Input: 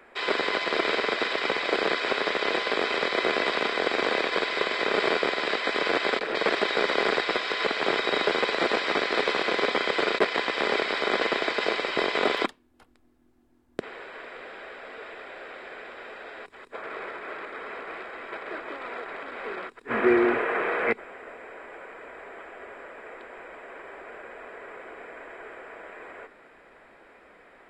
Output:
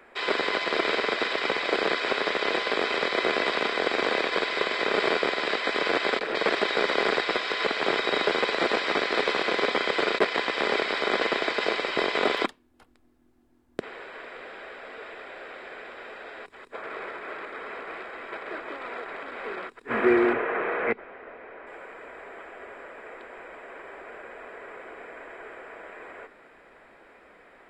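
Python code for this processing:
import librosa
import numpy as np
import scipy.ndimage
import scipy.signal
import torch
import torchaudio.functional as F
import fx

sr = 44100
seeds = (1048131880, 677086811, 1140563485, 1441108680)

y = fx.air_absorb(x, sr, metres=240.0, at=(20.33, 21.67))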